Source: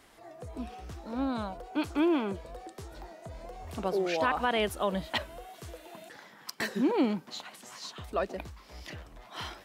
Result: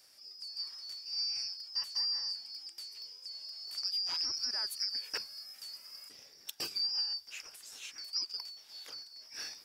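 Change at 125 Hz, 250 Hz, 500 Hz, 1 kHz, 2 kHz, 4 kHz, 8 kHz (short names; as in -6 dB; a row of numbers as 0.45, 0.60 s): under -25 dB, -33.0 dB, -28.0 dB, -22.0 dB, -13.0 dB, +8.0 dB, +3.5 dB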